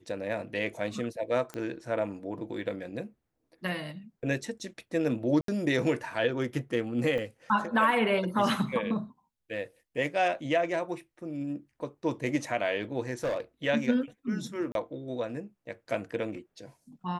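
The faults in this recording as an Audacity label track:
1.540000	1.540000	pop -23 dBFS
5.410000	5.480000	dropout 73 ms
7.180000	7.180000	dropout 3.4 ms
13.230000	13.400000	clipped -26 dBFS
14.720000	14.750000	dropout 32 ms

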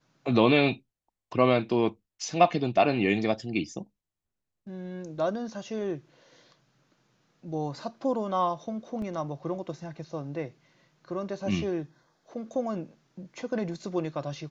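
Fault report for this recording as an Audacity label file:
9.020000	9.020000	dropout 2.8 ms

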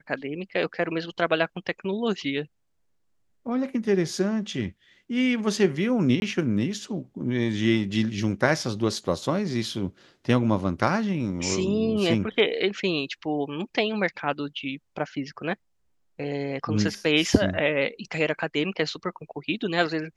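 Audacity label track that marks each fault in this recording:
6.200000	6.220000	dropout 21 ms

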